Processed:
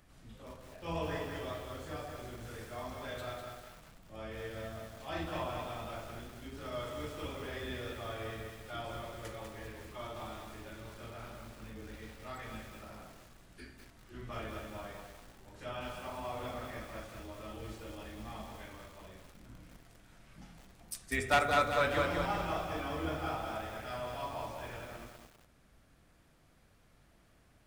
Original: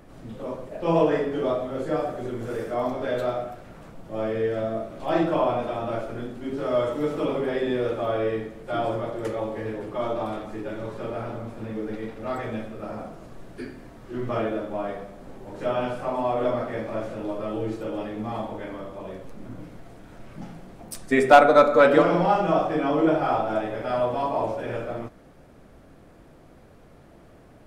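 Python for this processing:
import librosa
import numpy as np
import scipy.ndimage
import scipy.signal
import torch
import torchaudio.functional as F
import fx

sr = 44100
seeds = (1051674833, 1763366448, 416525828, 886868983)

y = fx.octave_divider(x, sr, octaves=2, level_db=-5.0)
y = fx.tone_stack(y, sr, knobs='5-5-5')
y = fx.echo_crushed(y, sr, ms=197, feedback_pct=55, bits=9, wet_db=-4)
y = y * 10.0 ** (1.0 / 20.0)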